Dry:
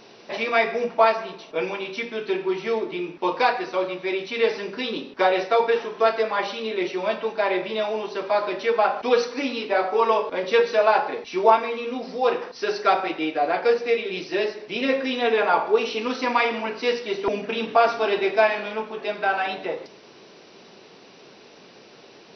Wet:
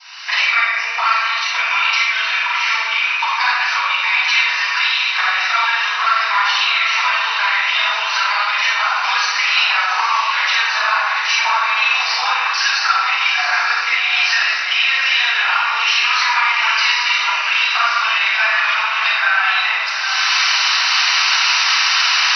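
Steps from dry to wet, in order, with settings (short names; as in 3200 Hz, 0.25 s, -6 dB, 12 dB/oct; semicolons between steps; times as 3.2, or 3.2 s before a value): local time reversal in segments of 35 ms; recorder AGC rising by 35 dB/s; steep high-pass 1100 Hz 36 dB/oct; notch 3400 Hz, Q 8.4; compressor 4:1, threshold -28 dBFS, peak gain reduction 9.5 dB; diffused feedback echo 0.779 s, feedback 46%, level -7 dB; shoebox room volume 310 m³, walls mixed, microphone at 7.3 m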